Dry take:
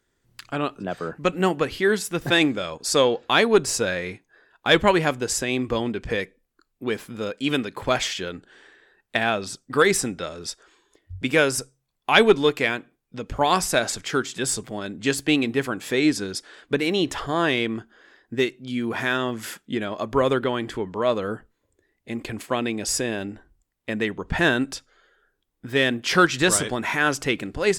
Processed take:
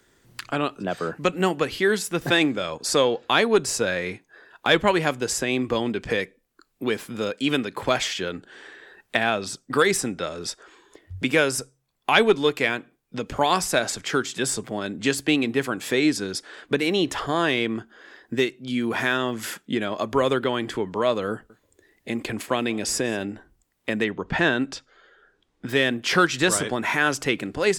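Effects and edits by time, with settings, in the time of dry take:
21.31–23.25 echo 0.185 s -24 dB
24.04–25.69 air absorption 80 m
whole clip: low shelf 75 Hz -7 dB; three-band squash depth 40%

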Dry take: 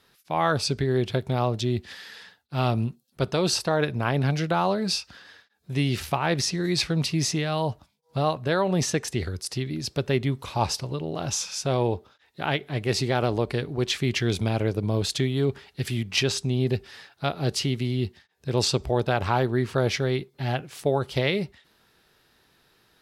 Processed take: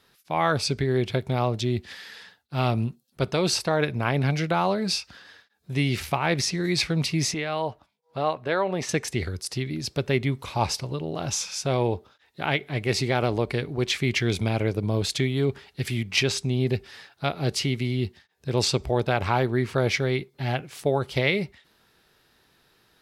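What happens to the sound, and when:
7.34–8.89 tone controls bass -10 dB, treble -10 dB
whole clip: dynamic EQ 2200 Hz, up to +7 dB, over -52 dBFS, Q 5.5

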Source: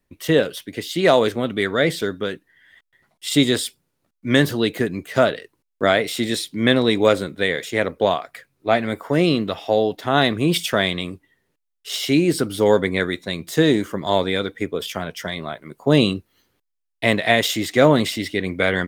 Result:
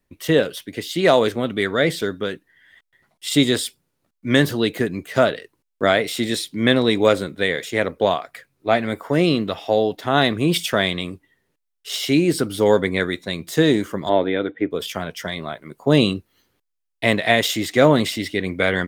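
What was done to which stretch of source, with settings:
14.09–14.71 speaker cabinet 130–2900 Hz, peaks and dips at 200 Hz -3 dB, 310 Hz +7 dB, 640 Hz +3 dB, 1100 Hz -5 dB, 2400 Hz -4 dB

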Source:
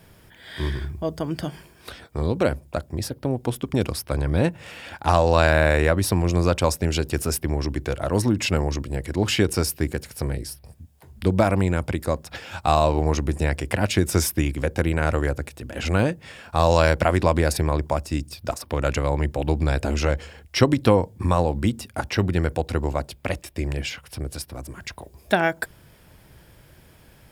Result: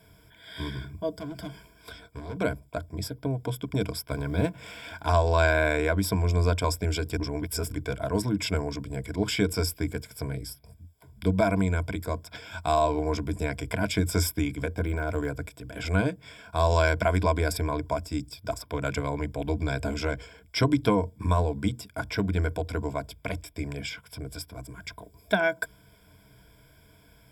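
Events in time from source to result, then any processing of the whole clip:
1.11–2.38 overloaded stage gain 28 dB
4.09–5.08 G.711 law mismatch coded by mu
7.17–7.72 reverse
14.71–15.34 de-esser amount 95%
whole clip: ripple EQ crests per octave 1.7, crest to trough 14 dB; gain -7.5 dB

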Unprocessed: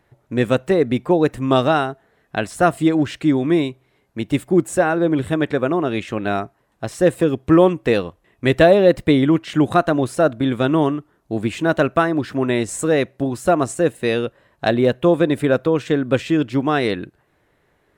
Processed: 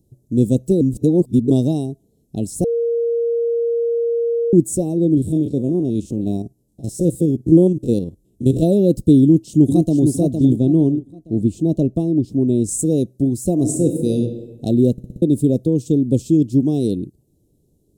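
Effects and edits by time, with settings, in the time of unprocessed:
0.81–1.5 reverse
2.64–4.53 bleep 467 Hz -11.5 dBFS
5.17–8.63 stepped spectrum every 50 ms
9.22–10.06 echo throw 0.46 s, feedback 35%, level -5.5 dB
10.56–12.64 high shelf 4900 Hz -12 dB
13.53–14.17 reverb throw, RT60 1.3 s, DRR 3.5 dB
14.92 stutter in place 0.06 s, 5 plays
whole clip: Chebyshev band-stop 270–7400 Hz, order 2; bell 2000 Hz -13 dB 0.77 oct; gain +6 dB

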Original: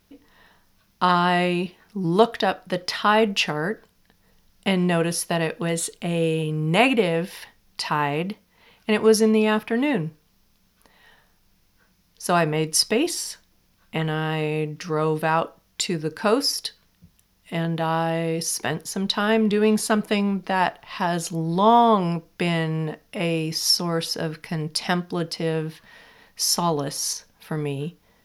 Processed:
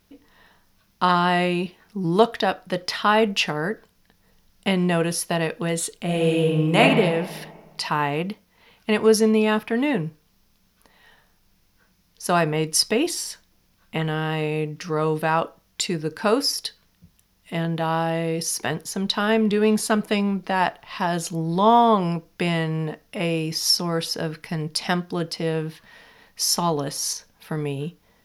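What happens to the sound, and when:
6.04–6.8 reverb throw, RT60 1.6 s, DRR -1.5 dB

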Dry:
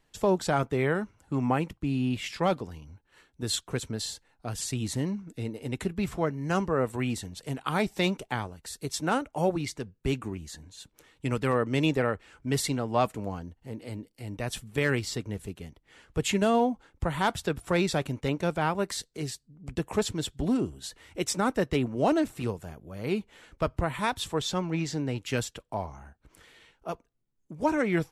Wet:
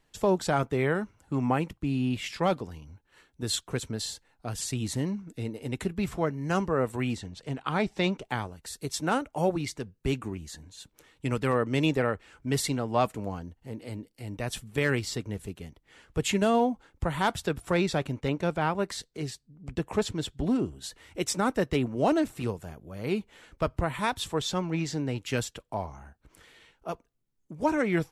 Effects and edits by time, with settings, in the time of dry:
7.15–8.25 air absorption 79 m
17.74–20.81 high shelf 7200 Hz -8 dB

